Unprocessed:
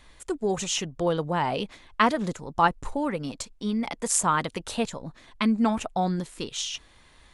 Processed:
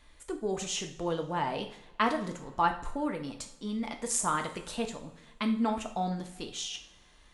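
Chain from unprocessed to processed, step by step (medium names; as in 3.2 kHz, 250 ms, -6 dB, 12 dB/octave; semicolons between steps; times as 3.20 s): two-slope reverb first 0.48 s, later 2.1 s, from -21 dB, DRR 4 dB; trim -7 dB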